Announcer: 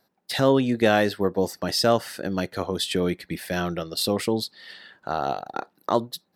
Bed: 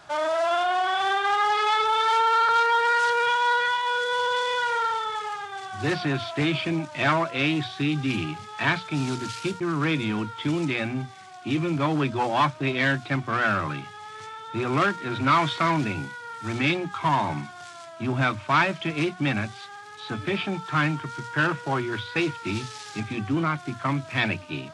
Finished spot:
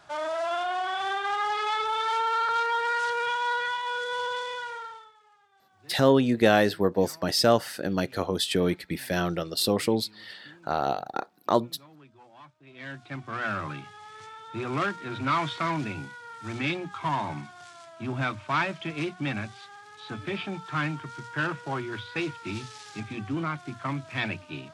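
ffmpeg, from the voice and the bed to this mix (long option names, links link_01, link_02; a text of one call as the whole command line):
ffmpeg -i stem1.wav -i stem2.wav -filter_complex "[0:a]adelay=5600,volume=-0.5dB[link_01];[1:a]volume=18dB,afade=type=out:start_time=4.24:duration=0.89:silence=0.0668344,afade=type=in:start_time=12.66:duration=0.99:silence=0.0668344[link_02];[link_01][link_02]amix=inputs=2:normalize=0" out.wav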